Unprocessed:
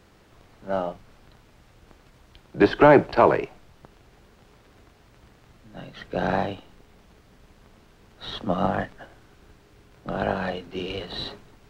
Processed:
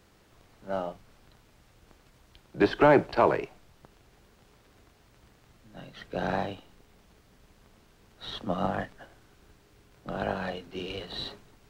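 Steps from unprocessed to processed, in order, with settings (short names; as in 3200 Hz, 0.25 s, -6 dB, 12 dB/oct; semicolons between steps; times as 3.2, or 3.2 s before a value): high shelf 4900 Hz +6 dB; gain -5.5 dB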